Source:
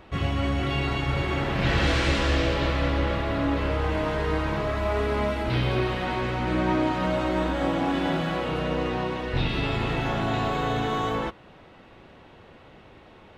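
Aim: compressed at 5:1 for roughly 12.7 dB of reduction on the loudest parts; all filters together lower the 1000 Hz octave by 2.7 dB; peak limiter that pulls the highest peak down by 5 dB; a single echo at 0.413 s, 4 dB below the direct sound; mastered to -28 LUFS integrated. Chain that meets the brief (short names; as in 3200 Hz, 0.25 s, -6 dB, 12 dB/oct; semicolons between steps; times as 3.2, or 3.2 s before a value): bell 1000 Hz -3.5 dB; compressor 5:1, threshold -34 dBFS; limiter -28.5 dBFS; echo 0.413 s -4 dB; gain +9 dB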